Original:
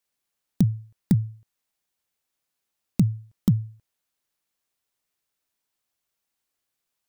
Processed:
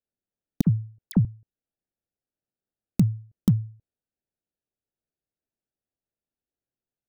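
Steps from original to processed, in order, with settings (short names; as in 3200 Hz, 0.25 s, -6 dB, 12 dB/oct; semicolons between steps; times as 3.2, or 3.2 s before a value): Wiener smoothing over 41 samples; 0.61–1.25 dispersion lows, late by 59 ms, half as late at 1600 Hz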